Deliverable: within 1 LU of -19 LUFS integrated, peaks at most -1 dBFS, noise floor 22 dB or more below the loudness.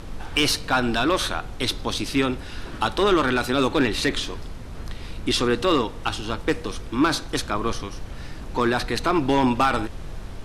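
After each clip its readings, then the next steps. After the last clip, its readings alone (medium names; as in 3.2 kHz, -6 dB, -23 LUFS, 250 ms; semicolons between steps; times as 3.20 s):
clipped samples 0.3%; clipping level -11.5 dBFS; noise floor -36 dBFS; noise floor target -46 dBFS; loudness -23.5 LUFS; peak level -11.5 dBFS; loudness target -19.0 LUFS
-> clip repair -11.5 dBFS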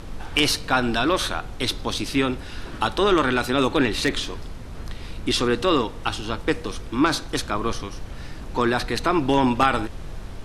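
clipped samples 0.0%; noise floor -36 dBFS; noise floor target -45 dBFS
-> noise print and reduce 9 dB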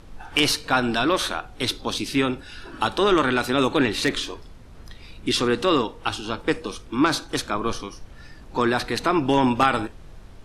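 noise floor -44 dBFS; noise floor target -45 dBFS
-> noise print and reduce 6 dB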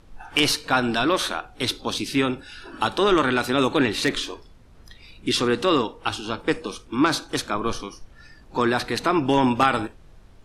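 noise floor -50 dBFS; loudness -23.0 LUFS; peak level -2.5 dBFS; loudness target -19.0 LUFS
-> trim +4 dB; peak limiter -1 dBFS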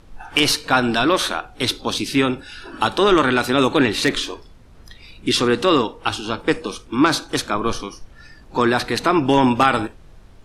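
loudness -19.0 LUFS; peak level -1.0 dBFS; noise floor -46 dBFS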